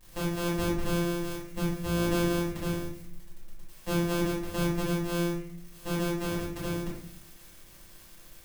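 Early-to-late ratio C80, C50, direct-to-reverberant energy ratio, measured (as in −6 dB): 7.0 dB, 3.0 dB, −8.0 dB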